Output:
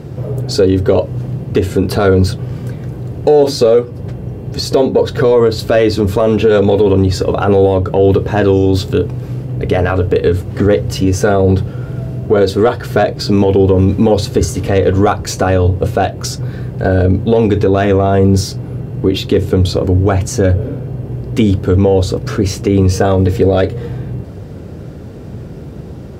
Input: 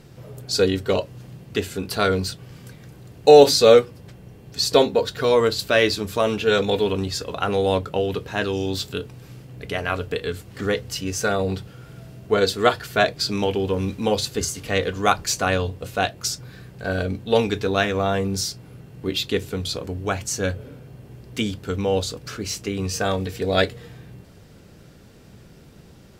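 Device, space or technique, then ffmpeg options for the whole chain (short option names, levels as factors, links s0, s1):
mastering chain: -af "highpass=53,equalizer=f=190:t=o:w=0.77:g=-4,acompressor=threshold=0.0708:ratio=2.5,asoftclip=type=tanh:threshold=0.211,tiltshelf=f=1100:g=9,alimiter=level_in=5.01:limit=0.891:release=50:level=0:latency=1,volume=0.891"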